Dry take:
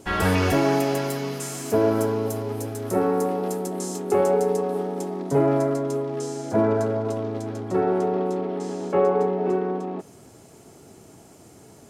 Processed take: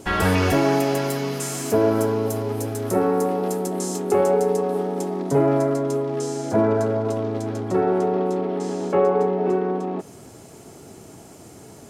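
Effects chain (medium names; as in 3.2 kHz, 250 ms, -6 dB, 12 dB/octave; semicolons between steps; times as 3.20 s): in parallel at -2 dB: compression, threshold -30 dBFS, peak gain reduction 14 dB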